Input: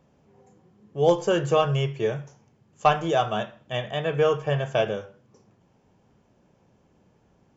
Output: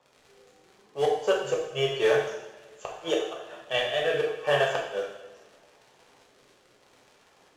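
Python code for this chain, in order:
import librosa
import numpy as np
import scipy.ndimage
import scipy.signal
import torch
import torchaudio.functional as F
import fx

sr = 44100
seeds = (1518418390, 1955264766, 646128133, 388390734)

p1 = scipy.signal.sosfilt(scipy.signal.butter(2, 580.0, 'highpass', fs=sr, output='sos'), x)
p2 = fx.notch(p1, sr, hz=2200.0, q=16.0)
p3 = fx.rider(p2, sr, range_db=10, speed_s=2.0)
p4 = p2 + (p3 * librosa.db_to_amplitude(0.5))
p5 = fx.quant_float(p4, sr, bits=2)
p6 = fx.gate_flip(p5, sr, shuts_db=-9.0, range_db=-30)
p7 = 10.0 ** (-11.5 / 20.0) * np.tanh(p6 / 10.0 ** (-11.5 / 20.0))
p8 = fx.rotary(p7, sr, hz=0.8)
p9 = fx.dmg_crackle(p8, sr, seeds[0], per_s=120.0, level_db=-42.0)
p10 = fx.air_absorb(p9, sr, metres=58.0)
y = fx.rev_double_slope(p10, sr, seeds[1], early_s=0.77, late_s=2.2, knee_db=-18, drr_db=-2.5)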